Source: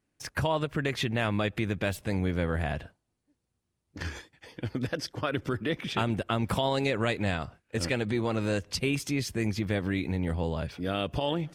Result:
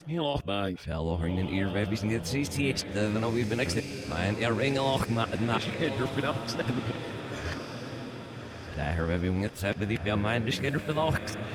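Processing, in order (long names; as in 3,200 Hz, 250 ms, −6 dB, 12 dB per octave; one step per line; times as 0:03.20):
played backwards from end to start
feedback delay with all-pass diffusion 1,234 ms, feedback 50%, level −8 dB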